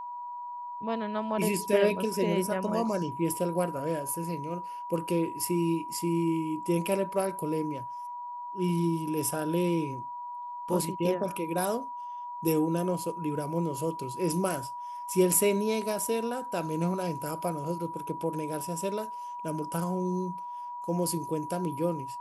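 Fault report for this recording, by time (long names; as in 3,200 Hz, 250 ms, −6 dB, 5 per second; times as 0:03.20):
whistle 970 Hz −36 dBFS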